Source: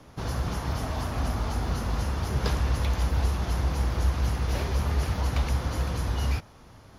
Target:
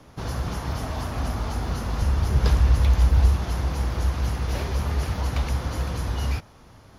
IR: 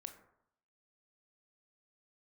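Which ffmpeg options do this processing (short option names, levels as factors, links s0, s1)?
-filter_complex "[0:a]asettb=1/sr,asplit=3[s0][s1][s2];[s0]atrim=end=2.014[s3];[s1]atrim=start=2.01:end=3.36,asetpts=PTS-STARTPTS,afade=t=in:d=0.004:c=qsin,afade=t=out:st=1.346:d=0.004:c=qsin,lowshelf=f=83:g=11.5[s4];[s2]atrim=start=3.356[s5];[s3][s4]acrossfade=d=0.004:c1=hsin:c2=qsin[s6];[s6][s5]acrossfade=d=0.004:c1=qsin:c2=hsin,volume=1.12"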